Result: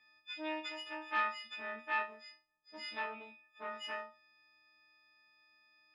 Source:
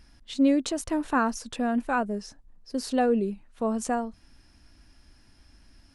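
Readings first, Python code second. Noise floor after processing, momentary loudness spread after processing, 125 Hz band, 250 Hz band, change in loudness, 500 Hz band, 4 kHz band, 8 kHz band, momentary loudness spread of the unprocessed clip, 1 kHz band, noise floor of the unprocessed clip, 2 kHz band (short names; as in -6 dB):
-74 dBFS, 18 LU, n/a, -26.0 dB, -12.5 dB, -18.0 dB, -4.5 dB, -26.0 dB, 12 LU, -10.0 dB, -59 dBFS, -3.5 dB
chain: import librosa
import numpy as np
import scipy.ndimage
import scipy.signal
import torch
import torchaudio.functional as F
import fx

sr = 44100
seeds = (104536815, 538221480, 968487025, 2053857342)

p1 = fx.freq_snap(x, sr, grid_st=6)
p2 = fx.rider(p1, sr, range_db=10, speed_s=0.5)
p3 = p1 + (p2 * librosa.db_to_amplitude(-2.5))
p4 = fx.cheby_harmonics(p3, sr, harmonics=(6,), levels_db=(-17,), full_scale_db=-4.0)
p5 = scipy.signal.sosfilt(scipy.signal.butter(4, 2700.0, 'lowpass', fs=sr, output='sos'), p4)
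p6 = np.diff(p5, prepend=0.0)
p7 = fx.resonator_bank(p6, sr, root=39, chord='major', decay_s=0.27)
y = p7 * librosa.db_to_amplitude(7.5)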